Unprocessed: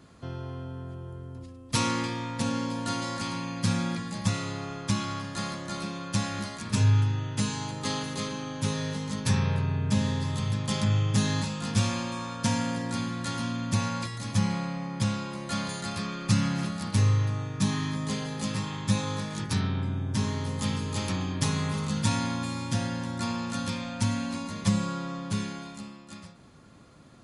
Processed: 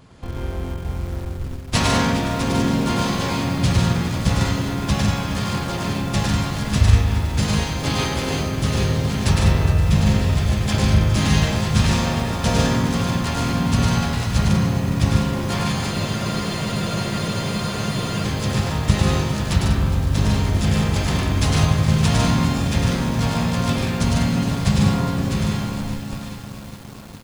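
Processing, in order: loudspeakers at several distances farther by 36 m -3 dB, 51 m -4 dB, 67 m -8 dB; in parallel at -11 dB: Schmitt trigger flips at -31 dBFS; on the sum: harmoniser -12 st -3 dB, -7 st -4 dB, -5 st -2 dB; spectral freeze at 15.92, 2.32 s; lo-fi delay 0.412 s, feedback 80%, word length 6-bit, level -13 dB; gain +1 dB

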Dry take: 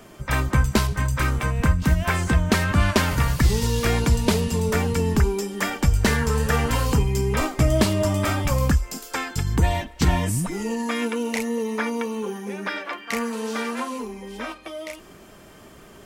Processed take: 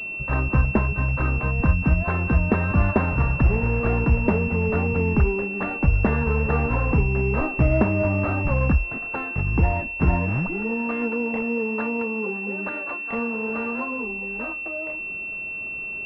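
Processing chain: pulse-width modulation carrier 2700 Hz

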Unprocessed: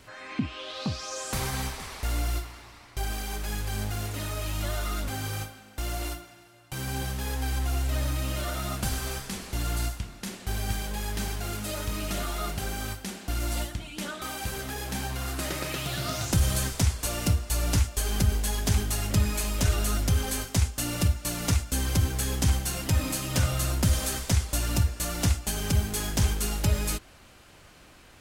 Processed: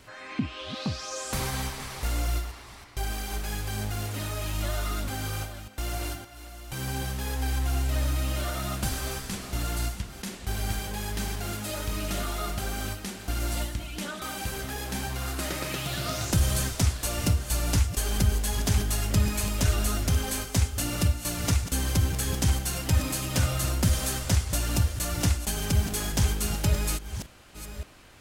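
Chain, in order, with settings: reverse delay 0.568 s, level -11.5 dB

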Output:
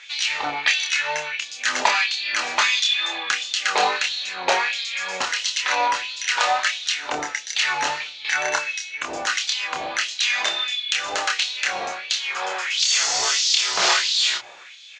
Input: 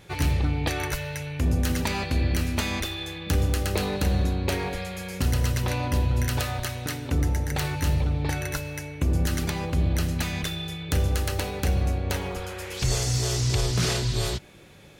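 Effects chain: wow and flutter 37 cents; elliptic low-pass 7000 Hz, stop band 70 dB; notches 60/120 Hz; doubler 27 ms -4.5 dB; LFO high-pass sine 1.5 Hz 750–3800 Hz; gain +8.5 dB

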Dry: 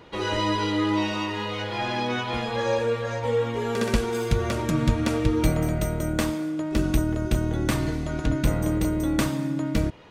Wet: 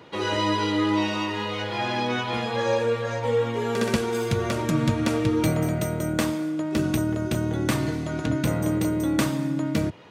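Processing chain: HPF 93 Hz 24 dB/oct; gain +1 dB

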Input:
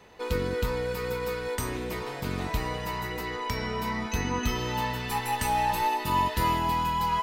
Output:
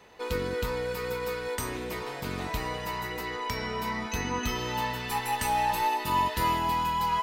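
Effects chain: low shelf 270 Hz -5 dB

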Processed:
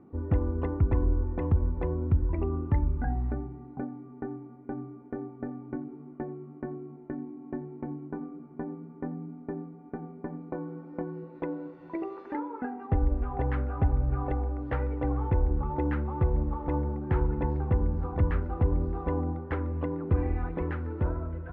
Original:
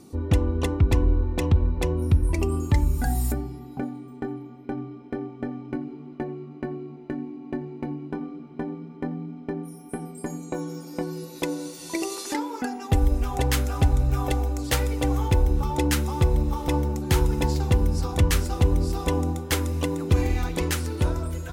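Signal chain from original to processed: LPF 1700 Hz 24 dB/oct; gain -5 dB

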